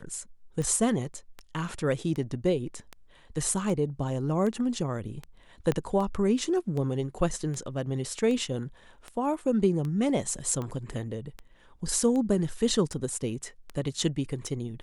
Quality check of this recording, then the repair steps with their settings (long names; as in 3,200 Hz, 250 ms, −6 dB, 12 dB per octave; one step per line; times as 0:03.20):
scratch tick 78 rpm −23 dBFS
0:05.72: click −15 dBFS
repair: click removal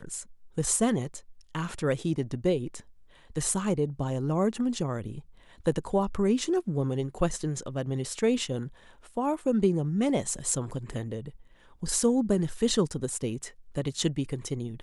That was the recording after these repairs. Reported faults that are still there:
0:05.72: click